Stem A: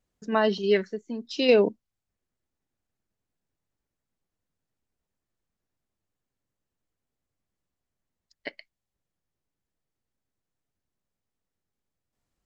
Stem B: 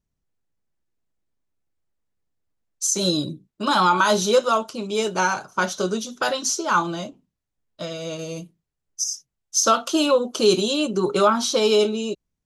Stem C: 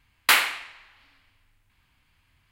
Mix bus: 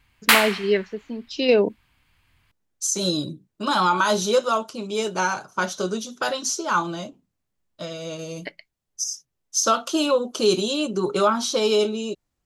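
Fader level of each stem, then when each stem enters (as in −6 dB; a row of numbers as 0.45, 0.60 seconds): +1.5, −2.0, +2.5 decibels; 0.00, 0.00, 0.00 seconds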